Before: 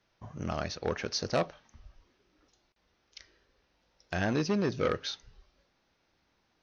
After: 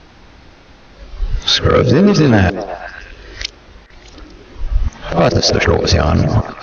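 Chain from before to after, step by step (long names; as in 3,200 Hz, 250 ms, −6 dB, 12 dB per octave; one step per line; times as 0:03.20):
played backwards from end to start
Bessel low-pass filter 5,000 Hz, order 4
low-shelf EQ 100 Hz +11.5 dB
downward compressor 3 to 1, threshold −35 dBFS, peak gain reduction 9.5 dB
on a send: echo through a band-pass that steps 122 ms, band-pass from 330 Hz, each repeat 0.7 octaves, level −7 dB
on the sum: boost into a limiter +30 dB
level −1 dB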